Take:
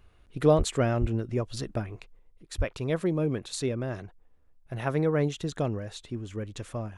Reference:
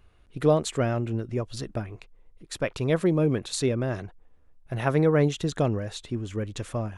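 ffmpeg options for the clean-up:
ffmpeg -i in.wav -filter_complex "[0:a]asplit=3[link_01][link_02][link_03];[link_01]afade=type=out:start_time=0.57:duration=0.02[link_04];[link_02]highpass=frequency=140:width=0.5412,highpass=frequency=140:width=1.3066,afade=type=in:start_time=0.57:duration=0.02,afade=type=out:start_time=0.69:duration=0.02[link_05];[link_03]afade=type=in:start_time=0.69:duration=0.02[link_06];[link_04][link_05][link_06]amix=inputs=3:normalize=0,asplit=3[link_07][link_08][link_09];[link_07]afade=type=out:start_time=1:duration=0.02[link_10];[link_08]highpass=frequency=140:width=0.5412,highpass=frequency=140:width=1.3066,afade=type=in:start_time=1:duration=0.02,afade=type=out:start_time=1.12:duration=0.02[link_11];[link_09]afade=type=in:start_time=1.12:duration=0.02[link_12];[link_10][link_11][link_12]amix=inputs=3:normalize=0,asplit=3[link_13][link_14][link_15];[link_13]afade=type=out:start_time=2.57:duration=0.02[link_16];[link_14]highpass=frequency=140:width=0.5412,highpass=frequency=140:width=1.3066,afade=type=in:start_time=2.57:duration=0.02,afade=type=out:start_time=2.69:duration=0.02[link_17];[link_15]afade=type=in:start_time=2.69:duration=0.02[link_18];[link_16][link_17][link_18]amix=inputs=3:normalize=0,asetnsamples=nb_out_samples=441:pad=0,asendcmd='2.19 volume volume 4.5dB',volume=0dB" out.wav

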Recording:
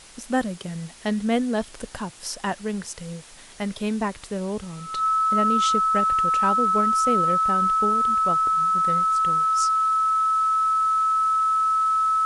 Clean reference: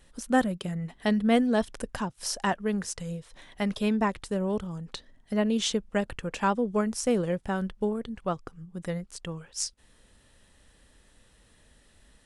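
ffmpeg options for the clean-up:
ffmpeg -i in.wav -af "bandreject=frequency=1300:width=30,afwtdn=0.0056" out.wav

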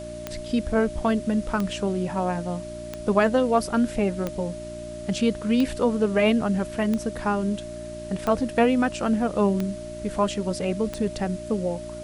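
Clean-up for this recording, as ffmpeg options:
ffmpeg -i in.wav -af "adeclick=threshold=4,bandreject=frequency=58.5:width_type=h:width=4,bandreject=frequency=117:width_type=h:width=4,bandreject=frequency=175.5:width_type=h:width=4,bandreject=frequency=234:width_type=h:width=4,bandreject=frequency=292.5:width_type=h:width=4,bandreject=frequency=351:width_type=h:width=4,bandreject=frequency=610:width=30,afwtdn=0.004" out.wav

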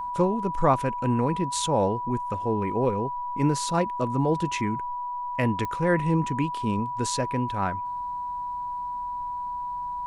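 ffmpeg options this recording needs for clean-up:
ffmpeg -i in.wav -af "adeclick=threshold=4,bandreject=frequency=980:width=30" out.wav

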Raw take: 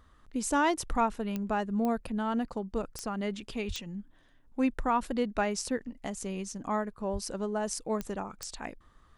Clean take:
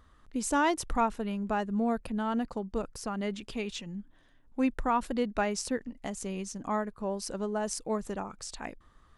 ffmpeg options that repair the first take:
ffmpeg -i in.wav -filter_complex "[0:a]adeclick=threshold=4,asplit=3[link_01][link_02][link_03];[link_01]afade=type=out:start_time=3.67:duration=0.02[link_04];[link_02]highpass=frequency=140:width=0.5412,highpass=frequency=140:width=1.3066,afade=type=in:start_time=3.67:duration=0.02,afade=type=out:start_time=3.79:duration=0.02[link_05];[link_03]afade=type=in:start_time=3.79:duration=0.02[link_06];[link_04][link_05][link_06]amix=inputs=3:normalize=0,asplit=3[link_07][link_08][link_09];[link_07]afade=type=out:start_time=7.12:duration=0.02[link_10];[link_08]highpass=frequency=140:width=0.5412,highpass=frequency=140:width=1.3066,afade=type=in:start_time=7.12:duration=0.02,afade=type=out:start_time=7.24:duration=0.02[link_11];[link_09]afade=type=in:start_time=7.24:duration=0.02[link_12];[link_10][link_11][link_12]amix=inputs=3:normalize=0" out.wav

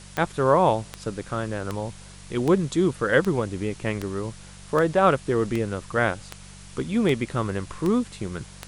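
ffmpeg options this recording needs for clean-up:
ffmpeg -i in.wav -af "adeclick=threshold=4,bandreject=frequency=48.1:width_type=h:width=4,bandreject=frequency=96.2:width_type=h:width=4,bandreject=frequency=144.3:width_type=h:width=4,bandreject=frequency=192.4:width_type=h:width=4,afftdn=noise_reduction=24:noise_floor=-44" out.wav

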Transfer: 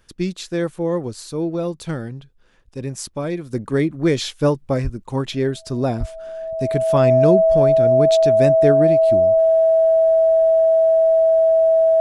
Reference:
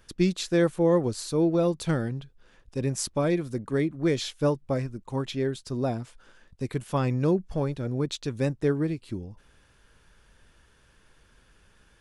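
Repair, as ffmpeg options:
ffmpeg -i in.wav -filter_complex "[0:a]bandreject=frequency=650:width=30,asplit=3[link_01][link_02][link_03];[link_01]afade=type=out:start_time=4.83:duration=0.02[link_04];[link_02]highpass=frequency=140:width=0.5412,highpass=frequency=140:width=1.3066,afade=type=in:start_time=4.83:duration=0.02,afade=type=out:start_time=4.95:duration=0.02[link_05];[link_03]afade=type=in:start_time=4.95:duration=0.02[link_06];[link_04][link_05][link_06]amix=inputs=3:normalize=0,asplit=3[link_07][link_08][link_09];[link_07]afade=type=out:start_time=5.99:duration=0.02[link_10];[link_08]highpass=frequency=140:width=0.5412,highpass=frequency=140:width=1.3066,afade=type=in:start_time=5.99:duration=0.02,afade=type=out:start_time=6.11:duration=0.02[link_11];[link_09]afade=type=in:start_time=6.11:duration=0.02[link_12];[link_10][link_11][link_12]amix=inputs=3:normalize=0,asetnsamples=nb_out_samples=441:pad=0,asendcmd='3.53 volume volume -7dB',volume=0dB" out.wav

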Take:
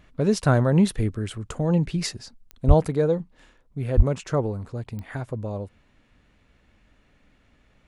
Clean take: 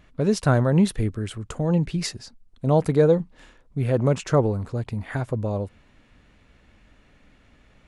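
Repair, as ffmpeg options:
ffmpeg -i in.wav -filter_complex "[0:a]adeclick=threshold=4,asplit=3[link_01][link_02][link_03];[link_01]afade=type=out:start_time=2.67:duration=0.02[link_04];[link_02]highpass=frequency=140:width=0.5412,highpass=frequency=140:width=1.3066,afade=type=in:start_time=2.67:duration=0.02,afade=type=out:start_time=2.79:duration=0.02[link_05];[link_03]afade=type=in:start_time=2.79:duration=0.02[link_06];[link_04][link_05][link_06]amix=inputs=3:normalize=0,asplit=3[link_07][link_08][link_09];[link_07]afade=type=out:start_time=3.96:duration=0.02[link_10];[link_08]highpass=frequency=140:width=0.5412,highpass=frequency=140:width=1.3066,afade=type=in:start_time=3.96:duration=0.02,afade=type=out:start_time=4.08:duration=0.02[link_11];[link_09]afade=type=in:start_time=4.08:duration=0.02[link_12];[link_10][link_11][link_12]amix=inputs=3:normalize=0,asetnsamples=nb_out_samples=441:pad=0,asendcmd='2.88 volume volume 4.5dB',volume=0dB" out.wav

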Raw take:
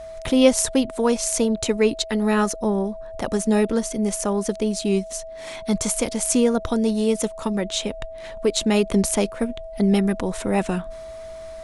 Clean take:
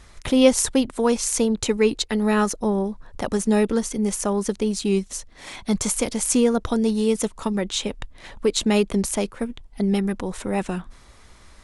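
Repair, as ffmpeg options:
ffmpeg -i in.wav -af "bandreject=frequency=650:width=30,asetnsamples=nb_out_samples=441:pad=0,asendcmd='8.85 volume volume -3dB',volume=0dB" out.wav

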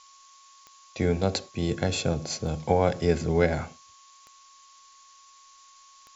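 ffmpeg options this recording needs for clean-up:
ffmpeg -i in.wav -af "adeclick=threshold=4,bandreject=frequency=1100:width=30,afftdn=noise_reduction=17:noise_floor=-54" out.wav

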